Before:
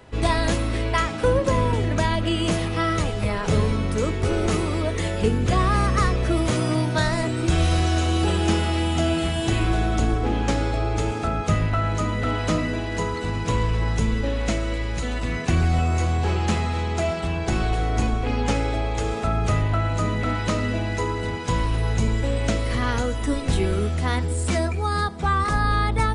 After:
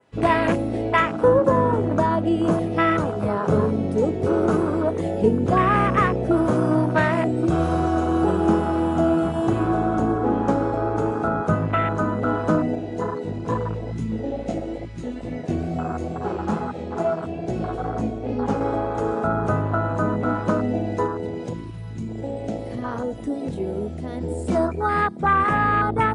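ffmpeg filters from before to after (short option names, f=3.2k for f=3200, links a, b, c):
-filter_complex "[0:a]asettb=1/sr,asplit=3[a][b][c];[a]atrim=end=12.754[d];[b]atrim=start=12.75:end=18.61,asetpts=PTS-STARTPTS,afade=t=in:d=0.004:c=qsin,afade=t=out:st=5.856:d=0.004:c=qsin,flanger=delay=16.5:depth=4.5:speed=2.3[e];[c]atrim=start=18.606[f];[d][e]acrossfade=d=0.004:c1=hsin:c2=qsin[g];[g][f]acrossfade=d=0.004:c1=qsin:c2=hsin,asettb=1/sr,asplit=3[h][i][j];[h]atrim=end=21.064[k];[i]atrim=start=21.06:end=24.21,asetpts=PTS-STARTPTS,afade=t=in:d=0.004:c=qsin,afade=t=out:st=3.146:d=0.004:c=qsin,acompressor=threshold=-25dB:ratio=3:attack=3.2:release=140:knee=1:detection=peak[l];[j]atrim=start=24.206[m];[k][l]acrossfade=d=0.004:c1=hsin:c2=qsin[n];[n][m]acrossfade=d=0.004:c1=qsin:c2=hsin,highpass=160,afwtdn=0.0501,adynamicequalizer=threshold=0.00447:dfrequency=4300:dqfactor=0.95:tfrequency=4300:tqfactor=0.95:attack=5:release=100:ratio=0.375:range=3:mode=cutabove:tftype=bell,volume=5dB"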